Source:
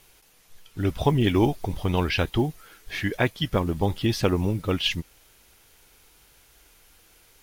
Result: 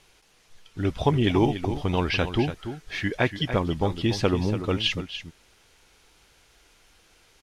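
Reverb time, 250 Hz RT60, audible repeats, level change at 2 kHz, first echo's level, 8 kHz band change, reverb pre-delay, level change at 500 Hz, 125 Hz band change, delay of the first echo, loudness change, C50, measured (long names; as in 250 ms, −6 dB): no reverb audible, no reverb audible, 1, +0.5 dB, −10.5 dB, −2.5 dB, no reverb audible, 0.0 dB, −1.0 dB, 288 ms, −0.5 dB, no reverb audible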